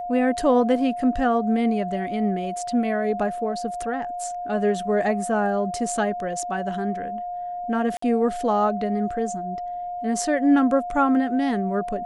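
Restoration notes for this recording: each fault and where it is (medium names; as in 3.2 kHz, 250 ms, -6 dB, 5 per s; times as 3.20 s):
whine 710 Hz -28 dBFS
7.97–8.02 s: dropout 54 ms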